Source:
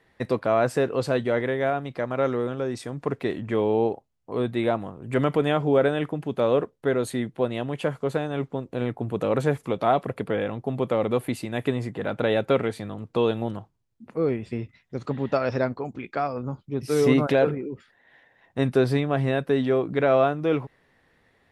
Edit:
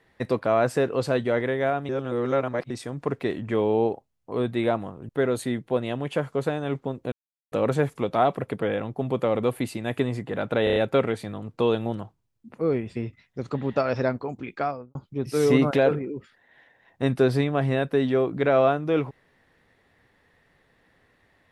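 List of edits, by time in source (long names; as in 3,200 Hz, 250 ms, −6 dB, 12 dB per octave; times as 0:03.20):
0:01.89–0:02.70: reverse
0:05.09–0:06.77: remove
0:08.80–0:09.20: silence
0:12.32: stutter 0.03 s, 5 plays
0:16.17–0:16.51: fade out and dull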